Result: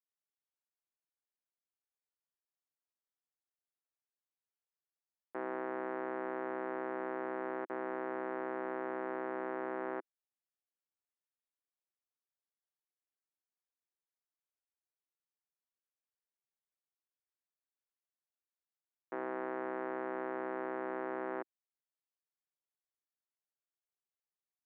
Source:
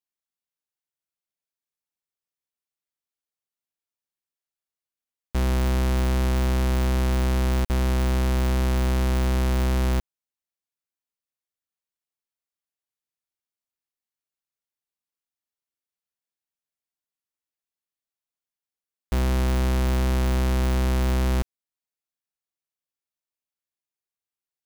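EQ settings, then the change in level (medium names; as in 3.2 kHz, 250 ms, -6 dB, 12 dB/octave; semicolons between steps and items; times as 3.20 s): elliptic band-pass 330–1800 Hz, stop band 80 dB; distance through air 160 m; -5.5 dB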